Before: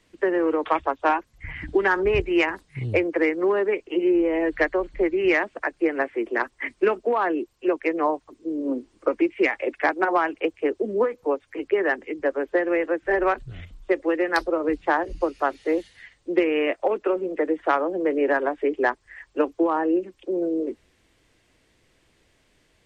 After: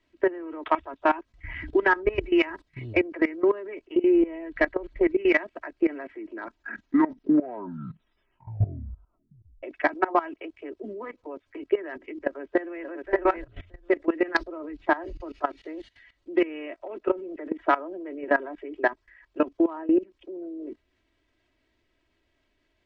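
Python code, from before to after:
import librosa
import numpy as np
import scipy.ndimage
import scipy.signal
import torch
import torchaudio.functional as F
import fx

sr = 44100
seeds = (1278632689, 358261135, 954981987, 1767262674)

y = fx.echo_throw(x, sr, start_s=12.26, length_s=0.63, ms=580, feedback_pct=15, wet_db=-8.5)
y = fx.edit(y, sr, fx.tape_stop(start_s=6.03, length_s=3.6), tone=tone)
y = scipy.signal.sosfilt(scipy.signal.butter(2, 4300.0, 'lowpass', fs=sr, output='sos'), y)
y = y + 0.6 * np.pad(y, (int(3.1 * sr / 1000.0), 0))[:len(y)]
y = fx.level_steps(y, sr, step_db=18)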